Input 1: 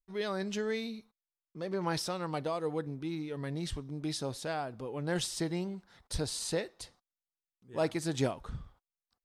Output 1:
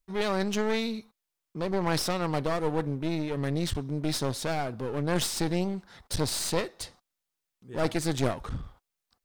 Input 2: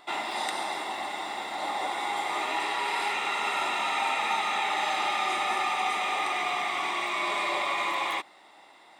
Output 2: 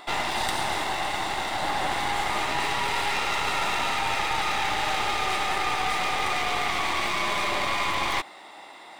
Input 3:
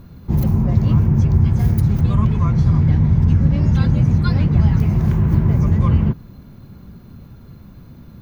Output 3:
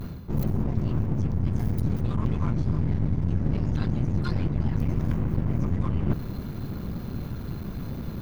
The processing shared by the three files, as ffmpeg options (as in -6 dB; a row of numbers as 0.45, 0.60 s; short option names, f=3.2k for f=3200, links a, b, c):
-af "areverse,acompressor=threshold=-28dB:ratio=10,areverse,aeval=exprs='clip(val(0),-1,0.00631)':c=same,volume=9dB"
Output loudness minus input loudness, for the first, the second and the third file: +5.5, +2.5, -12.0 LU